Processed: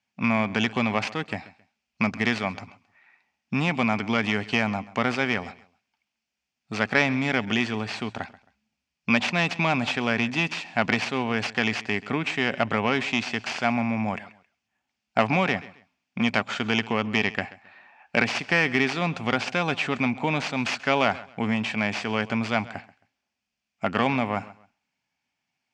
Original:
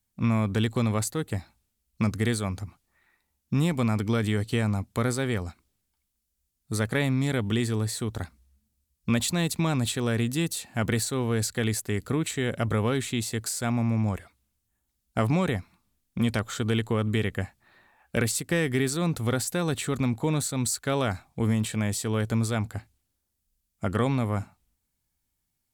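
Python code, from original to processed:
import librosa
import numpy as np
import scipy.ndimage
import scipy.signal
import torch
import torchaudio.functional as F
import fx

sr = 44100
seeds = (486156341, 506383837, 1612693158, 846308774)

p1 = fx.tracing_dist(x, sr, depth_ms=0.26)
p2 = fx.cabinet(p1, sr, low_hz=270.0, low_slope=12, high_hz=5100.0, hz=(340.0, 480.0, 760.0, 1200.0, 2500.0, 3900.0), db=(-9, -8, 4, -3, 8, -8))
p3 = p2 + fx.echo_feedback(p2, sr, ms=134, feedback_pct=27, wet_db=-19.0, dry=0)
y = p3 * 10.0 ** (7.0 / 20.0)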